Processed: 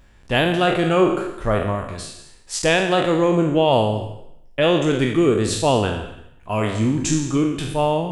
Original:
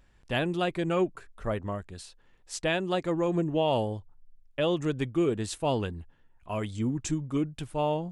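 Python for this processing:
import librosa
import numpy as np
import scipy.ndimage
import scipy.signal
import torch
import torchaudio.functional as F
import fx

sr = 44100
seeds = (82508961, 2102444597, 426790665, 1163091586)

y = fx.spec_trails(x, sr, decay_s=0.74)
y = fx.rev_gated(y, sr, seeds[0], gate_ms=270, shape='flat', drr_db=12.0)
y = y * 10.0 ** (8.5 / 20.0)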